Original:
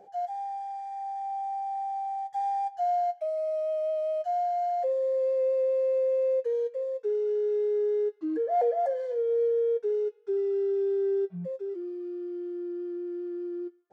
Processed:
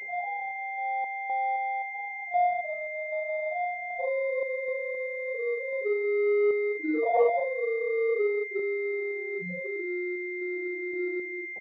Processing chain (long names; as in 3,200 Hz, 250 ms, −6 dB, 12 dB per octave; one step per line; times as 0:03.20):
every overlapping window played backwards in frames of 135 ms
reversed playback
upward compression, threshold −34 dBFS
reversed playback
sample-and-hold tremolo 3.2 Hz, depth 70%
tempo change 1.2×
switching amplifier with a slow clock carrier 2,100 Hz
level +7 dB